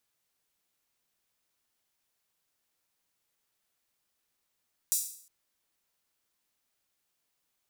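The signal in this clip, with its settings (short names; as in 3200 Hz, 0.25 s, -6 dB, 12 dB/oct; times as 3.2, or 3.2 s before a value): open hi-hat length 0.36 s, high-pass 7000 Hz, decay 0.56 s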